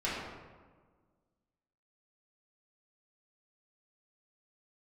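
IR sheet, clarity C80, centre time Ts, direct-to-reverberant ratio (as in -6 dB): 2.0 dB, 87 ms, -9.5 dB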